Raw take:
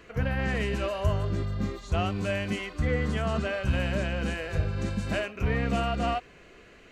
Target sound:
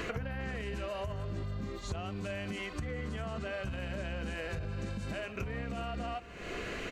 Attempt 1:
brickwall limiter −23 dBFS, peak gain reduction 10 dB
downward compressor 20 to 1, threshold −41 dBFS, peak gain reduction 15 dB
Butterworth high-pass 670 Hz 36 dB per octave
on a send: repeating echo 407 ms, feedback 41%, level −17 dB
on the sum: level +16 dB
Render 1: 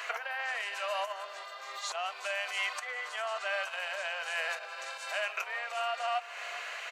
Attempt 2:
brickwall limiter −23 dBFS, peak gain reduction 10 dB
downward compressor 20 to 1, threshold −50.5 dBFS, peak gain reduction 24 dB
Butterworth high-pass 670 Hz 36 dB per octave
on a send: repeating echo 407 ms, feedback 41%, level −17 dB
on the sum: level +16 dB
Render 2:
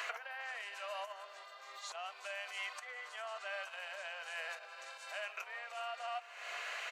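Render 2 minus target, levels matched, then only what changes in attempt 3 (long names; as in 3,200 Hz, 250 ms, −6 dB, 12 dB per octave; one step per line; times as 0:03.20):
500 Hz band −3.0 dB
remove: Butterworth high-pass 670 Hz 36 dB per octave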